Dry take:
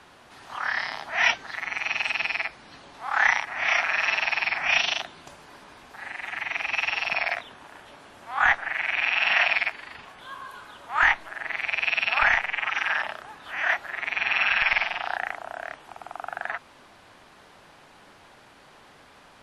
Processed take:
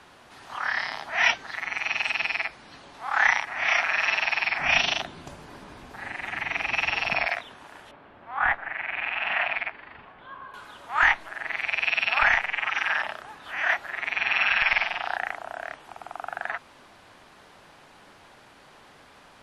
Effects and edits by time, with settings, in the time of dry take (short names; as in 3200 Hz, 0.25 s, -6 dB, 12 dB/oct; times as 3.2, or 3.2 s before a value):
4.59–7.26 low shelf 410 Hz +11 dB
7.91–10.54 air absorption 450 m